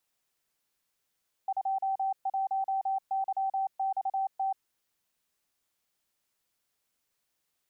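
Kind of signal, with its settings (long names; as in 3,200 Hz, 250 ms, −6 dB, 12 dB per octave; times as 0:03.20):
Morse code "21YXT" 28 words per minute 774 Hz −26.5 dBFS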